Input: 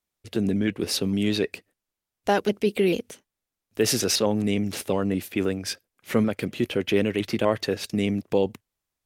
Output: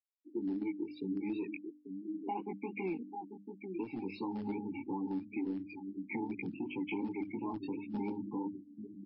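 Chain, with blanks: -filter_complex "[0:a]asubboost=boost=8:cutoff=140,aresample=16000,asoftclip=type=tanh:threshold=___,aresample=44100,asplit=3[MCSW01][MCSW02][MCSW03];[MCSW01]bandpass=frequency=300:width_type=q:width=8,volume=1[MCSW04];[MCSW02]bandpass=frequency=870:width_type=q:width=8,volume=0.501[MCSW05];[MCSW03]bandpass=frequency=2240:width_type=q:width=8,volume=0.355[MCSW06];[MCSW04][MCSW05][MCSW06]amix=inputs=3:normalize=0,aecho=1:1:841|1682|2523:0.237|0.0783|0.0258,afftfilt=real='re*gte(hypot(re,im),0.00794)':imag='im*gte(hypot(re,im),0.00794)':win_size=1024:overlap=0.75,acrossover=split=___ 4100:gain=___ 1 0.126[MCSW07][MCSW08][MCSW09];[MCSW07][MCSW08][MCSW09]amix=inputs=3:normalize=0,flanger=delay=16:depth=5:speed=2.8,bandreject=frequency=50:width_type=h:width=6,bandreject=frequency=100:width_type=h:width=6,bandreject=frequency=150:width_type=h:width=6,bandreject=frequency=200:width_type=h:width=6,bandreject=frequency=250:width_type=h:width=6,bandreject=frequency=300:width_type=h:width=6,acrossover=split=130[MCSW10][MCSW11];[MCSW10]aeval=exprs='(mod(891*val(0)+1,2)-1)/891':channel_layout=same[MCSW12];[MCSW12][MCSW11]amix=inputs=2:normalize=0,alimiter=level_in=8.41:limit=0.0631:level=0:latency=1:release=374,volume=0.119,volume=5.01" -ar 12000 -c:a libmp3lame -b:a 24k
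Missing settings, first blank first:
0.119, 220, 0.2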